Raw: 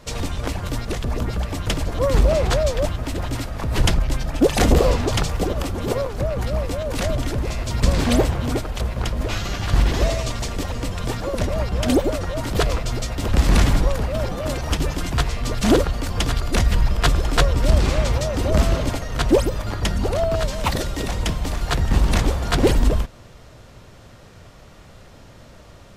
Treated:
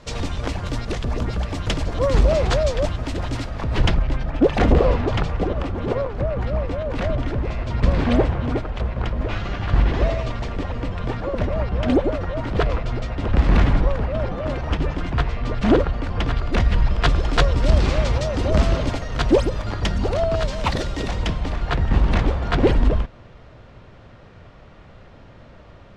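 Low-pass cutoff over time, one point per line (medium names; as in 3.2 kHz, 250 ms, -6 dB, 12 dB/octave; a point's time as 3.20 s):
3.33 s 6.1 kHz
4.19 s 2.5 kHz
16.21 s 2.5 kHz
17.49 s 5.2 kHz
21.05 s 5.2 kHz
21.64 s 2.9 kHz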